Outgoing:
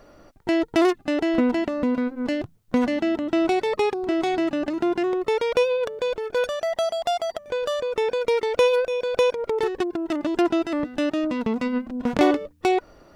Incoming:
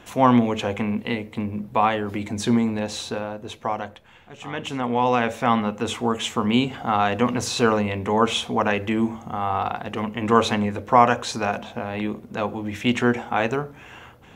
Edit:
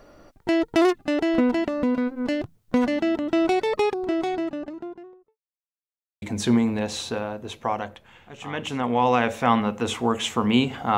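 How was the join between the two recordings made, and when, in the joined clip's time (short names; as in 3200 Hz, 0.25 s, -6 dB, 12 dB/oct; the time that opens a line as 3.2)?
outgoing
3.76–5.38 studio fade out
5.38–6.22 mute
6.22 switch to incoming from 2.22 s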